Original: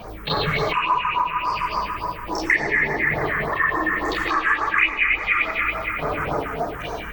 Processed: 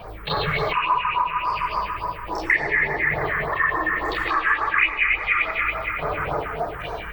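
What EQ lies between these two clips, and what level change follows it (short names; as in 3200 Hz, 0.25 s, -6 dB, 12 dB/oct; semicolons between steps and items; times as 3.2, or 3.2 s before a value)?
fifteen-band EQ 250 Hz -11 dB, 6300 Hz -11 dB, 16000 Hz -7 dB; 0.0 dB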